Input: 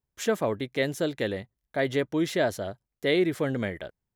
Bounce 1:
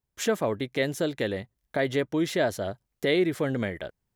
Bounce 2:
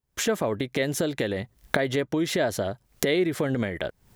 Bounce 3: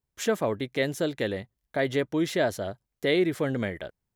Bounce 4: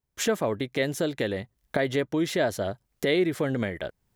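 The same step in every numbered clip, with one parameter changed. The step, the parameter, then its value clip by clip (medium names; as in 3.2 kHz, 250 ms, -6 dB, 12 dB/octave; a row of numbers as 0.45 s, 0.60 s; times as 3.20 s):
recorder AGC, rising by: 13 dB/s, 85 dB/s, 5.1 dB/s, 33 dB/s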